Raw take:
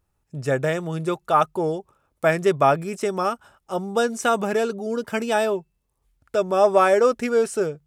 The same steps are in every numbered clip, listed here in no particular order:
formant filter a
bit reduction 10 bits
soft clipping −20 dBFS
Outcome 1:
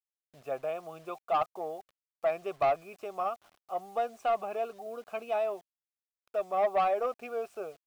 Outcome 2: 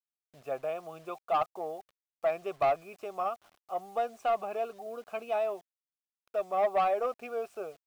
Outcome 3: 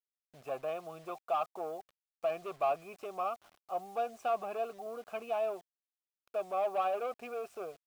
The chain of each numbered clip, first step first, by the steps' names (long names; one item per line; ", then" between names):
formant filter, then bit reduction, then soft clipping
formant filter, then soft clipping, then bit reduction
soft clipping, then formant filter, then bit reduction